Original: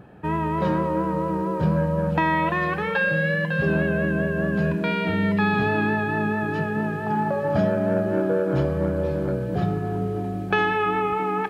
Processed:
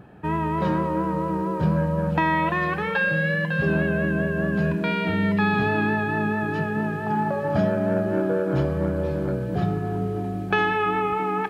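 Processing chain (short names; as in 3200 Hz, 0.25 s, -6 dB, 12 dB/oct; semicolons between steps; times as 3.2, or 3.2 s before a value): bell 520 Hz -3 dB 0.36 oct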